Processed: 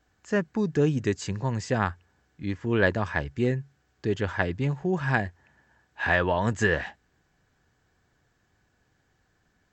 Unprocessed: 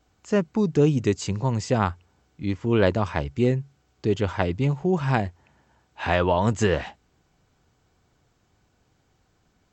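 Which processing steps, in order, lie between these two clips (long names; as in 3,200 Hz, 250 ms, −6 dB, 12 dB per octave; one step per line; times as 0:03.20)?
parametric band 1,700 Hz +12.5 dB 0.28 octaves
level −4 dB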